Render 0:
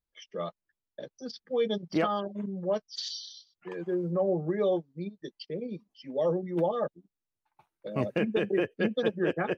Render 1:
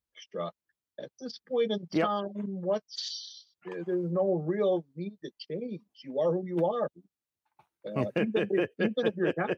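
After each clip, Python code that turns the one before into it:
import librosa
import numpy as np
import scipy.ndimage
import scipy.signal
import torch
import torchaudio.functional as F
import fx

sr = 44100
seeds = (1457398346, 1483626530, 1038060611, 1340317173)

y = scipy.signal.sosfilt(scipy.signal.butter(2, 55.0, 'highpass', fs=sr, output='sos'), x)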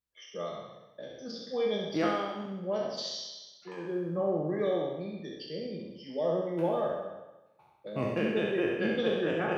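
y = fx.spec_trails(x, sr, decay_s=1.03)
y = fx.room_flutter(y, sr, wall_m=11.4, rt60_s=0.62)
y = y * librosa.db_to_amplitude(-5.0)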